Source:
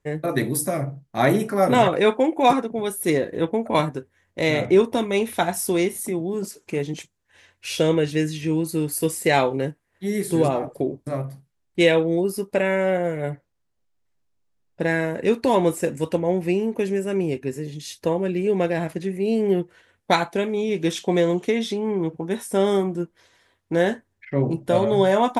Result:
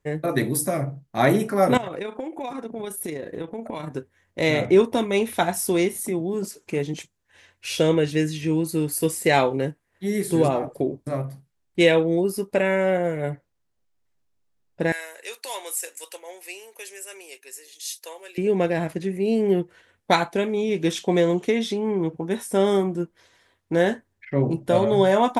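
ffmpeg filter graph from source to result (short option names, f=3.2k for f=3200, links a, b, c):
-filter_complex "[0:a]asettb=1/sr,asplit=3[a][b][c];[a]atrim=end=1.774[d];[b]atrim=start=1.77:end=3.91,asetpts=PTS-STARTPTS,afade=t=in:d=0.004:c=qsin,afade=t=out:st=2.136:d=0.004:c=qsin,acompressor=threshold=-25dB:ratio=12:attack=3.2:release=140:knee=1:detection=peak,tremolo=f=28:d=0.4[e];[c]atrim=start=3.906[f];[d][e]acrossfade=d=0.004:c1=hsin:c2=qsin[g];[g][f]acrossfade=d=0.004:c1=qsin:c2=hsin,asettb=1/sr,asplit=3[h][i][j];[h]atrim=end=14.924[k];[i]atrim=start=14.92:end=18.38,asetpts=PTS-STARTPTS,afade=t=in:d=0.004:c=qsin,afade=t=out:st=3.456:d=0.004:c=qsin,highpass=f=390:w=0.5412,highpass=f=390:w=1.3066,acontrast=48,aderivative[l];[j]atrim=start=18.376[m];[k][l]acrossfade=d=0.004:c1=hsin:c2=qsin[n];[n][m]acrossfade=d=0.004:c1=qsin:c2=hsin"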